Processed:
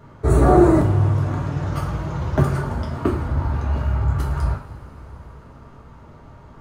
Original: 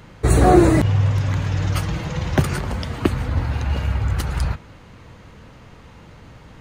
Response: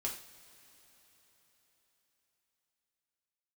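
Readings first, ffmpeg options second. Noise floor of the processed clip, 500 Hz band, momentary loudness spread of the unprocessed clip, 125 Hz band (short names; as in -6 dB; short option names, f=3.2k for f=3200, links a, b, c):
-45 dBFS, +0.5 dB, 12 LU, -0.5 dB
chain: -filter_complex "[0:a]highshelf=f=1.7k:t=q:w=1.5:g=-8[a];[1:a]atrim=start_sample=2205[b];[a][b]afir=irnorm=-1:irlink=0,volume=-1.5dB"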